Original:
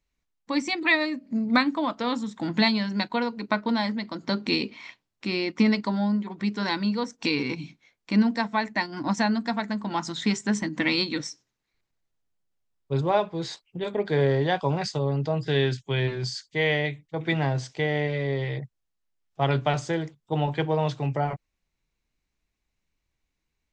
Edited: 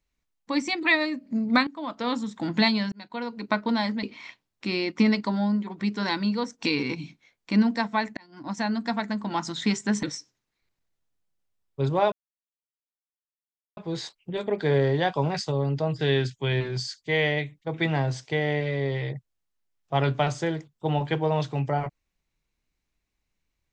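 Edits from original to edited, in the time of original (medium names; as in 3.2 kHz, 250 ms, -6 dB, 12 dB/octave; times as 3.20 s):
1.67–2.10 s: fade in linear, from -20 dB
2.92–3.50 s: fade in
4.03–4.63 s: delete
8.77–9.51 s: fade in
10.63–11.15 s: delete
13.24 s: insert silence 1.65 s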